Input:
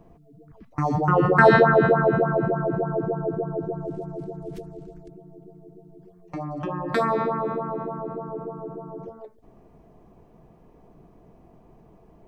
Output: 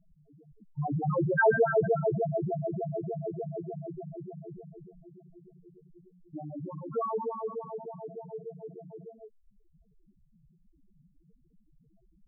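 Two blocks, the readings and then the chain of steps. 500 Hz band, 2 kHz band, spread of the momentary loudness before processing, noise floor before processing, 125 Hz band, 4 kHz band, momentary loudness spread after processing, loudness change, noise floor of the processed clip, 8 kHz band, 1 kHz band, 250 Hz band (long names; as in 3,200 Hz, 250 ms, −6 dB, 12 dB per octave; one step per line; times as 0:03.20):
−7.5 dB, −9.0 dB, 21 LU, −54 dBFS, −7.5 dB, below −35 dB, 21 LU, −9.0 dB, −66 dBFS, can't be measured, −11.0 dB, −10.5 dB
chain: spectral peaks only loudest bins 2
level −3.5 dB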